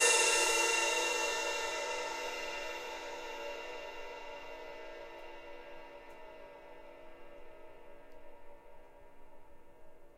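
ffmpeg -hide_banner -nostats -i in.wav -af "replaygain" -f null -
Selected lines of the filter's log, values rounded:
track_gain = +12.6 dB
track_peak = 0.123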